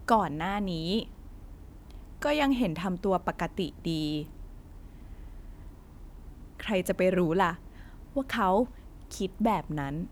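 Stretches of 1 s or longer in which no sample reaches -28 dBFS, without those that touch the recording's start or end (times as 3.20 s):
1.03–2.22 s
4.21–6.60 s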